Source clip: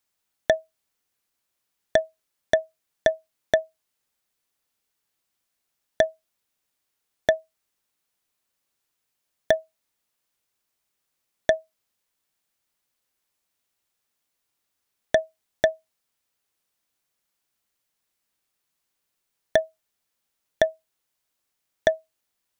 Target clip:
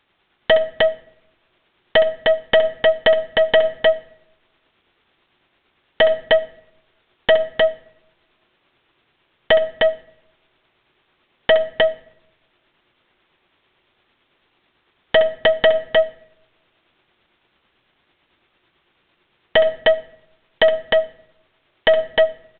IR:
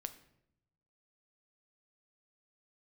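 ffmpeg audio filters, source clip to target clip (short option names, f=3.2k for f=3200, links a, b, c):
-filter_complex "[0:a]equalizer=f=360:w=7.9:g=9.5,aeval=exprs='0.141*(abs(mod(val(0)/0.141+3,4)-2)-1)':c=same,aeval=exprs='(tanh(20*val(0)+0.15)-tanh(0.15))/20':c=same,aecho=1:1:66|307:0.237|0.562,tremolo=f=9:d=0.31,asplit=2[a][b];[1:a]atrim=start_sample=2205[c];[b][c]afir=irnorm=-1:irlink=0,volume=2dB[d];[a][d]amix=inputs=2:normalize=0,alimiter=level_in=23.5dB:limit=-1dB:release=50:level=0:latency=1,volume=-6dB" -ar 8000 -c:a adpcm_g726 -b:a 40k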